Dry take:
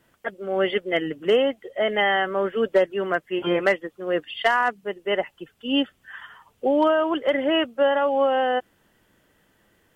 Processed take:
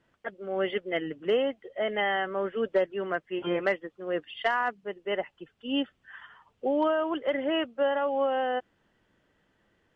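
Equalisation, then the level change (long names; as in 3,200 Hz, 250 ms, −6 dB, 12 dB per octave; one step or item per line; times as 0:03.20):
high-frequency loss of the air 100 metres
−6.0 dB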